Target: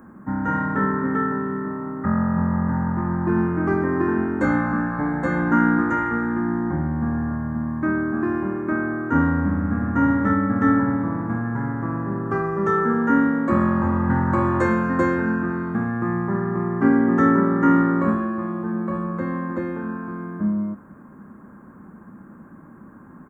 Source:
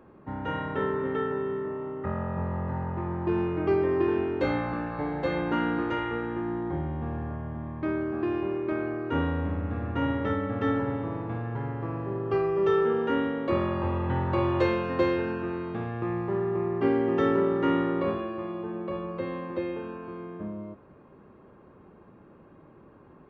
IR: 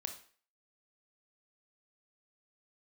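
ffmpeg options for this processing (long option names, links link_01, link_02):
-af "firequalizer=gain_entry='entry(130,0);entry(210,12);entry(400,-6);entry(1000,3);entry(1600,8);entry(2800,-17);entry(4800,-9);entry(7000,13)':delay=0.05:min_phase=1,volume=4.5dB"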